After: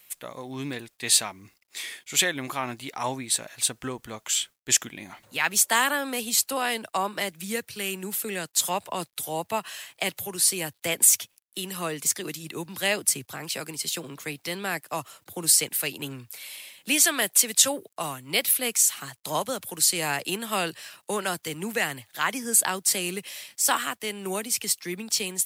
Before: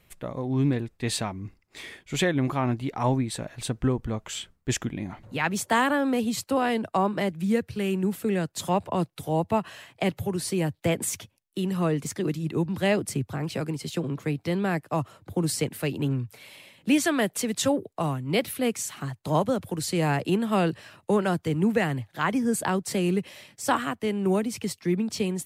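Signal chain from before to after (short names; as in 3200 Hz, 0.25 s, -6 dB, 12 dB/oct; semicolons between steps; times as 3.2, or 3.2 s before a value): tilt +4.5 dB/oct; bit-crush 11-bit; gain -1 dB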